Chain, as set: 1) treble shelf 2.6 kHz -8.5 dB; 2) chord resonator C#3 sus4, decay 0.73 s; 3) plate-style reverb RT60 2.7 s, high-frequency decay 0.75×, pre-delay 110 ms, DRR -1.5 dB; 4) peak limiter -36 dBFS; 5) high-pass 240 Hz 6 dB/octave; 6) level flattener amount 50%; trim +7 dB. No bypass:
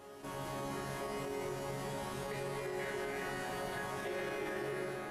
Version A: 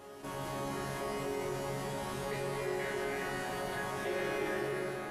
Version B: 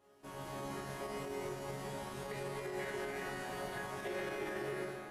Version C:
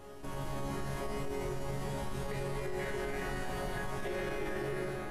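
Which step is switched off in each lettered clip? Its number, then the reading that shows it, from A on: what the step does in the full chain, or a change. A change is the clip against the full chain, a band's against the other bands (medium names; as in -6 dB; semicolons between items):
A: 4, momentary loudness spread change +1 LU; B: 6, momentary loudness spread change +2 LU; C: 5, crest factor change -2.0 dB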